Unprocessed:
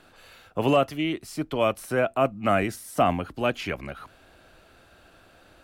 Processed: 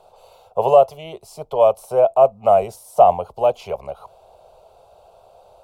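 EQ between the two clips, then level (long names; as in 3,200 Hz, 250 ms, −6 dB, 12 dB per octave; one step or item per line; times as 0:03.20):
flat-topped bell 620 Hz +13 dB
phaser with its sweep stopped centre 730 Hz, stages 4
−1.5 dB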